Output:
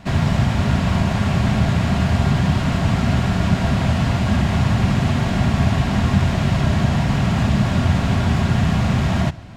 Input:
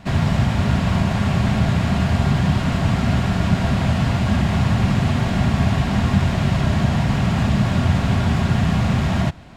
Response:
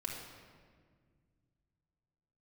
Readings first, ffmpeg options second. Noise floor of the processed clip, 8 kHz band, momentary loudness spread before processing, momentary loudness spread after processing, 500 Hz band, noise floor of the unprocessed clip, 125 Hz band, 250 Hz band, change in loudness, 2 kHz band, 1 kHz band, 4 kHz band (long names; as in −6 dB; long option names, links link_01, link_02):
−22 dBFS, +1.5 dB, 1 LU, 1 LU, +1.0 dB, −22 dBFS, +0.5 dB, +0.5 dB, +0.5 dB, +0.5 dB, +0.5 dB, +1.0 dB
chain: -filter_complex "[0:a]asplit=2[link_01][link_02];[link_02]equalizer=frequency=6100:width_type=o:width=0.77:gain=10[link_03];[1:a]atrim=start_sample=2205[link_04];[link_03][link_04]afir=irnorm=-1:irlink=0,volume=-19dB[link_05];[link_01][link_05]amix=inputs=2:normalize=0"